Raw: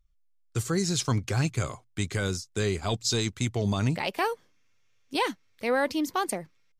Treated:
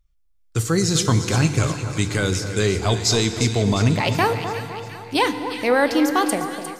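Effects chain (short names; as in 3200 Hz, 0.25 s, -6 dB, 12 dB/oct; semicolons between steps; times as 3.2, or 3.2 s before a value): split-band echo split 1500 Hz, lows 0.254 s, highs 0.354 s, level -10 dB; FDN reverb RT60 2.5 s, low-frequency decay 1.4×, high-frequency decay 1×, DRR 10 dB; AGC gain up to 4 dB; gain +3.5 dB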